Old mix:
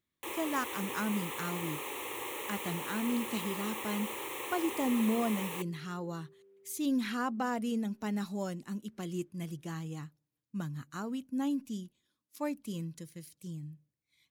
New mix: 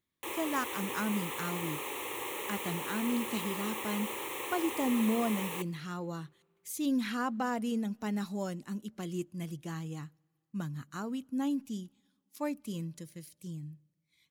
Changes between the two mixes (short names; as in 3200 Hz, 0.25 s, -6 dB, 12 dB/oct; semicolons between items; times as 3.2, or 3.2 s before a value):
second sound: entry -2.30 s; reverb: on, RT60 2.3 s